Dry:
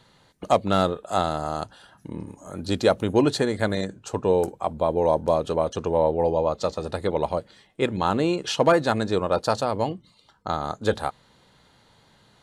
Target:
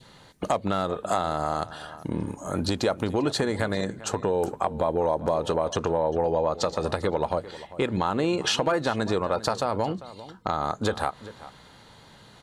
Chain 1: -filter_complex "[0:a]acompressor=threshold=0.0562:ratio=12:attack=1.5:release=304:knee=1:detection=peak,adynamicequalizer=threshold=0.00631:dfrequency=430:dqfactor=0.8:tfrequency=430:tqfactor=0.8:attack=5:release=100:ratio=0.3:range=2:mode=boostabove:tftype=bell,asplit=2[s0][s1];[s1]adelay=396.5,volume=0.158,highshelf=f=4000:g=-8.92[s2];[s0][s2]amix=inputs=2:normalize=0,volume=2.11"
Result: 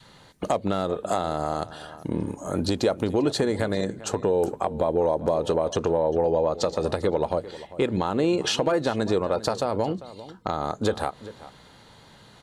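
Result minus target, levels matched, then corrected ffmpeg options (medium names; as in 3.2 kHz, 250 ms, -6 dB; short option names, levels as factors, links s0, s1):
1 kHz band -3.0 dB
-filter_complex "[0:a]acompressor=threshold=0.0562:ratio=12:attack=1.5:release=304:knee=1:detection=peak,adynamicequalizer=threshold=0.00631:dfrequency=1200:dqfactor=0.8:tfrequency=1200:tqfactor=0.8:attack=5:release=100:ratio=0.3:range=2:mode=boostabove:tftype=bell,asplit=2[s0][s1];[s1]adelay=396.5,volume=0.158,highshelf=f=4000:g=-8.92[s2];[s0][s2]amix=inputs=2:normalize=0,volume=2.11"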